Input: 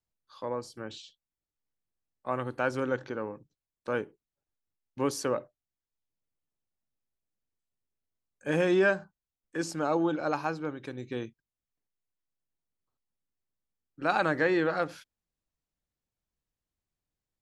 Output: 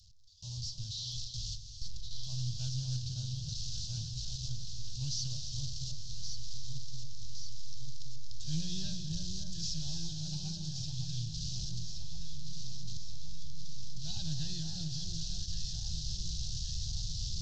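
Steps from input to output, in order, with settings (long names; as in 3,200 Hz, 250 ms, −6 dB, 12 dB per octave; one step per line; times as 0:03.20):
linear delta modulator 32 kbit/s, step −36.5 dBFS
on a send: delay that swaps between a low-pass and a high-pass 561 ms, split 1,400 Hz, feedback 78%, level −4.5 dB
on the sum: noise gate with hold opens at −34 dBFS
inverse Chebyshev band-stop filter 250–2,300 Hz, stop band 40 dB
reverb whose tail is shaped and stops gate 350 ms rising, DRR 7.5 dB
highs frequency-modulated by the lows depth 0.11 ms
level +7.5 dB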